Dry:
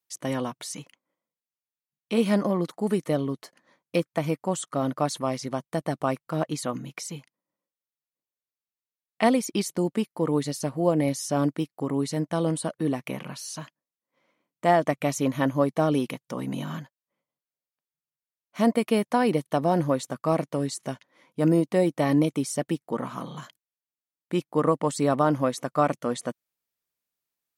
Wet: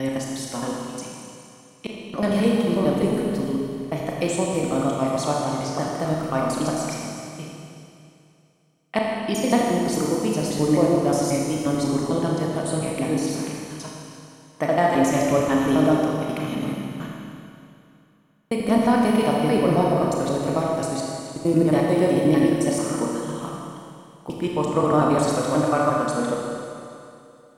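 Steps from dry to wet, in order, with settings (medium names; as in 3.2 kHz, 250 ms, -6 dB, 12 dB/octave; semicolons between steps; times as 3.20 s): slices played last to first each 89 ms, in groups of 4; vibrato 13 Hz 8.3 cents; Schroeder reverb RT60 2.6 s, combs from 26 ms, DRR -2.5 dB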